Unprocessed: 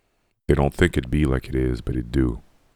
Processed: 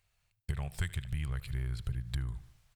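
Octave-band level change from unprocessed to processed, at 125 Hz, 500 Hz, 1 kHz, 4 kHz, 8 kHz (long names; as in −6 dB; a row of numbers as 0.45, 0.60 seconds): −11.5, −30.0, −21.0, −12.0, −9.0 decibels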